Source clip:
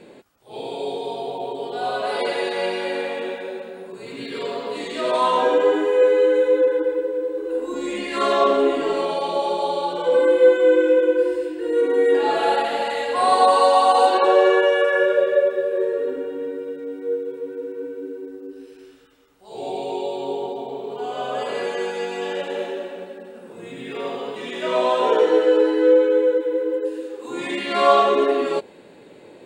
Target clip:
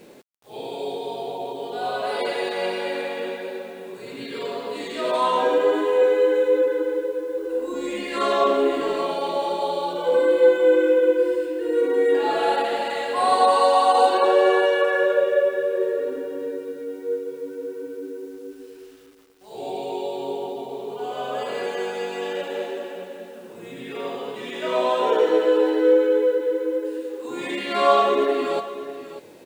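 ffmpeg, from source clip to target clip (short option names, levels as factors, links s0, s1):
-filter_complex "[0:a]acrusher=bits=8:mix=0:aa=0.000001,asplit=2[s0][s1];[s1]aecho=0:1:595:0.224[s2];[s0][s2]amix=inputs=2:normalize=0,volume=0.794"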